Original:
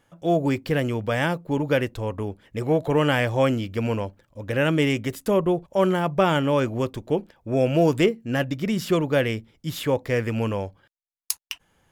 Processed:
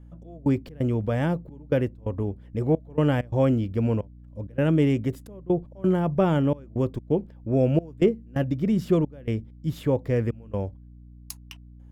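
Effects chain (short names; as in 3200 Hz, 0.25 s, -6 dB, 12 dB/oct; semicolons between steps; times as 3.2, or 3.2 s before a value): step gate "xx..xx.xxxx" 131 bpm -24 dB; hum 60 Hz, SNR 24 dB; tilt shelf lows +8 dB, about 750 Hz; gain -4.5 dB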